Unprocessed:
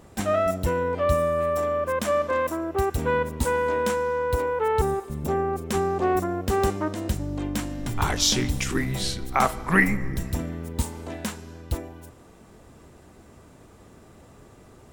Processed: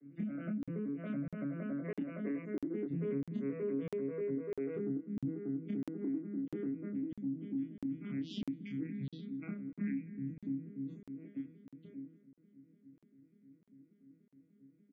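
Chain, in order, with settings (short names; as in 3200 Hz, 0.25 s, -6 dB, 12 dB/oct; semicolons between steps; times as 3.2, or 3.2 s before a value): arpeggiated vocoder minor triad, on C#3, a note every 96 ms; Doppler pass-by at 3.23, 8 m/s, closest 6.6 m; loudest bins only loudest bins 64; vowel filter i; low shelf 190 Hz +10 dB; notches 50/100/150/200/250 Hz; compressor 8:1, threshold -52 dBFS, peak gain reduction 19.5 dB; doubler 29 ms -3 dB; crackling interface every 0.65 s, samples 2048, zero, from 0.63; gain +14.5 dB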